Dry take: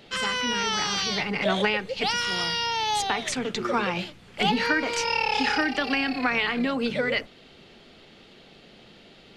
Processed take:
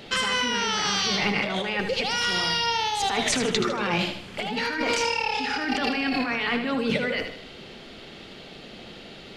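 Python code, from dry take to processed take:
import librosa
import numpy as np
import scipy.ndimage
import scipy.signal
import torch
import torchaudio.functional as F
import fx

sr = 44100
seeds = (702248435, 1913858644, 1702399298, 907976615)

y = fx.over_compress(x, sr, threshold_db=-30.0, ratio=-1.0)
y = fx.echo_feedback(y, sr, ms=77, feedback_pct=45, wet_db=-8)
y = F.gain(torch.from_numpy(y), 3.5).numpy()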